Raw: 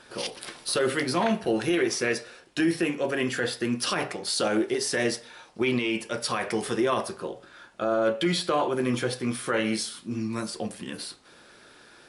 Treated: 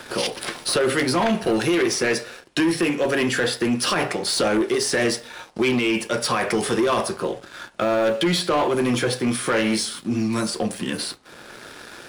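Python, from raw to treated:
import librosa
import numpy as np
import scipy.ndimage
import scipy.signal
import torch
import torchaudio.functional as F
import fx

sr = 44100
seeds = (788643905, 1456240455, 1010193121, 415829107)

y = fx.leveller(x, sr, passes=2)
y = fx.band_squash(y, sr, depth_pct=40)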